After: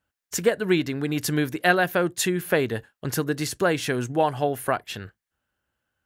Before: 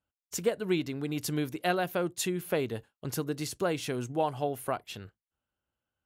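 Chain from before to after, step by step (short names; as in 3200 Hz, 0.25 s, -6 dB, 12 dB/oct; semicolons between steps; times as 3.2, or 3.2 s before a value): bell 1700 Hz +9 dB 0.41 oct; gain +7 dB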